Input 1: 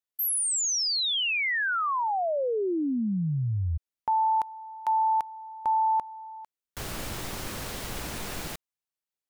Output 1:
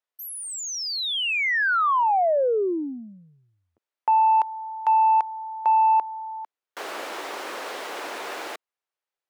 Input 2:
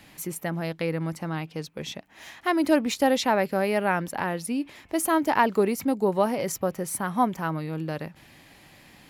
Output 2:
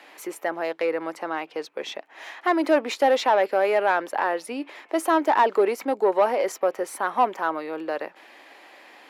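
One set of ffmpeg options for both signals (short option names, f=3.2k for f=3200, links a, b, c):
-filter_complex "[0:a]asplit=2[a][b];[b]highpass=f=720:p=1,volume=17dB,asoftclip=type=tanh:threshold=-6.5dB[c];[a][c]amix=inputs=2:normalize=0,lowpass=f=1.1k:p=1,volume=-6dB,highpass=f=330:w=0.5412,highpass=f=330:w=1.3066"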